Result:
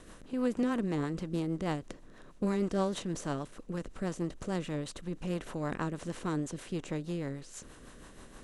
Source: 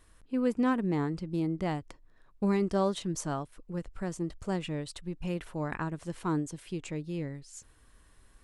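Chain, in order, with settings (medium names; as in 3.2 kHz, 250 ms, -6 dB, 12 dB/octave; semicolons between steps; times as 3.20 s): spectral levelling over time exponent 0.6; rotary cabinet horn 6.3 Hz; trim -3 dB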